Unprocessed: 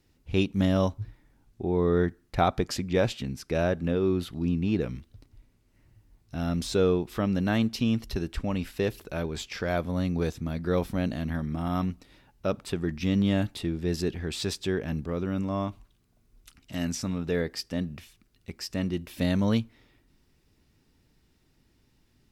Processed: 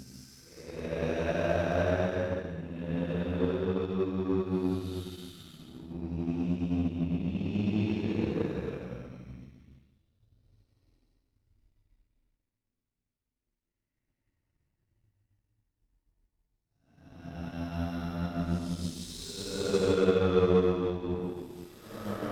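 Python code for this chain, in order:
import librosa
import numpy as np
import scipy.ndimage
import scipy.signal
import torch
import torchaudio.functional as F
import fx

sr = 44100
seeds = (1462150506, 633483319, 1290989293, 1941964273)

y = fx.paulstretch(x, sr, seeds[0], factor=5.8, window_s=0.25, from_s=3.35)
y = fx.power_curve(y, sr, exponent=1.4)
y = fx.hum_notches(y, sr, base_hz=60, count=2)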